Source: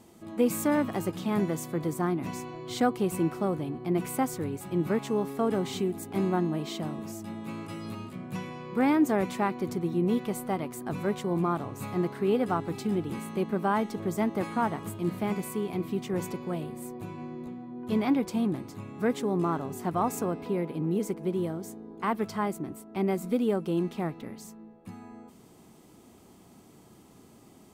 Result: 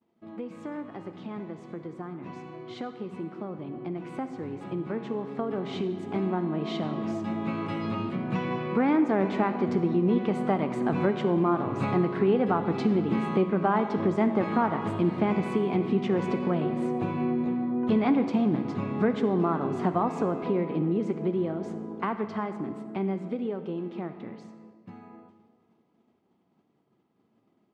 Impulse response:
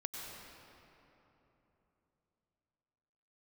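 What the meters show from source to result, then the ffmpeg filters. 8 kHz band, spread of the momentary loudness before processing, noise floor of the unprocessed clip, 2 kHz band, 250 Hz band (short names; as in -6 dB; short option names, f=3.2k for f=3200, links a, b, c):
under -15 dB, 12 LU, -55 dBFS, +1.0 dB, +2.0 dB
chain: -filter_complex "[0:a]flanger=delay=4.3:depth=4.6:regen=84:speed=0.31:shape=sinusoidal,highpass=130,lowpass=3.8k,acompressor=threshold=-40dB:ratio=3,agate=range=-33dB:threshold=-50dB:ratio=3:detection=peak,aemphasis=mode=reproduction:type=50kf,asplit=2[a][b];[1:a]atrim=start_sample=2205,asetrate=88200,aresample=44100[c];[b][c]afir=irnorm=-1:irlink=0,volume=0.5dB[d];[a][d]amix=inputs=2:normalize=0,dynaudnorm=f=410:g=31:m=14dB"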